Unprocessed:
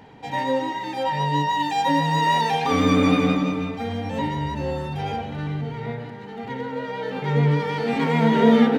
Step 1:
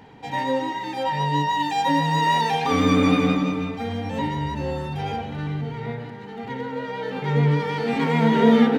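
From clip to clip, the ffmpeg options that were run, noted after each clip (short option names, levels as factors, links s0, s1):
-af "equalizer=f=610:t=o:w=0.32:g=-3"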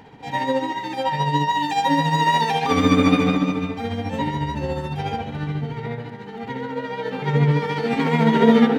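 -af "tremolo=f=14:d=0.44,volume=1.5"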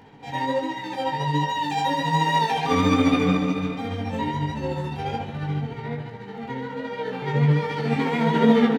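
-af "flanger=delay=18.5:depth=4.5:speed=1.3,aecho=1:1:432:0.237"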